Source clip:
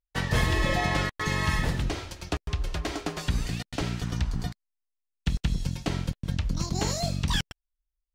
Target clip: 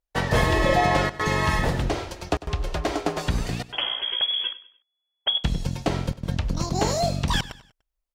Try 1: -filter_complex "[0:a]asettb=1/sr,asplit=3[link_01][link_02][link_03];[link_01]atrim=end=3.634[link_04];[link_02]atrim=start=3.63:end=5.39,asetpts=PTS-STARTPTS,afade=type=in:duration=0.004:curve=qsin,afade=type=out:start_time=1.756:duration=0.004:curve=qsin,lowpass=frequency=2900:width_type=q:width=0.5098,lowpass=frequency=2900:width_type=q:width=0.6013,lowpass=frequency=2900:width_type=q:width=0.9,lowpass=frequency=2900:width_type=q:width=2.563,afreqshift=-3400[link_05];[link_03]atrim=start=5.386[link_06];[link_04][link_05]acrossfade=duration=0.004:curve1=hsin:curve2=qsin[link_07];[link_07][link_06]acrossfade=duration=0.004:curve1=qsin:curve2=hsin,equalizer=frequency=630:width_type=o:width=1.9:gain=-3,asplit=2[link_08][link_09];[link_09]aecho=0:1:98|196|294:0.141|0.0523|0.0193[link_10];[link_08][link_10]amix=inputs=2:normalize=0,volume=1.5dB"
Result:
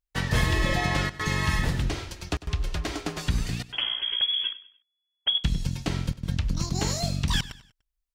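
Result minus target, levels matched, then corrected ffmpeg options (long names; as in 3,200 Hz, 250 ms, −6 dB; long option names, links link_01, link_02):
500 Hz band −7.5 dB
-filter_complex "[0:a]asettb=1/sr,asplit=3[link_01][link_02][link_03];[link_01]atrim=end=3.634[link_04];[link_02]atrim=start=3.63:end=5.39,asetpts=PTS-STARTPTS,afade=type=in:duration=0.004:curve=qsin,afade=type=out:start_time=1.756:duration=0.004:curve=qsin,lowpass=frequency=2900:width_type=q:width=0.5098,lowpass=frequency=2900:width_type=q:width=0.6013,lowpass=frequency=2900:width_type=q:width=0.9,lowpass=frequency=2900:width_type=q:width=2.563,afreqshift=-3400[link_05];[link_03]atrim=start=5.386[link_06];[link_04][link_05]acrossfade=duration=0.004:curve1=hsin:curve2=qsin[link_07];[link_07][link_06]acrossfade=duration=0.004:curve1=qsin:curve2=hsin,equalizer=frequency=630:width_type=o:width=1.9:gain=8.5,asplit=2[link_08][link_09];[link_09]aecho=0:1:98|196|294:0.141|0.0523|0.0193[link_10];[link_08][link_10]amix=inputs=2:normalize=0,volume=1.5dB"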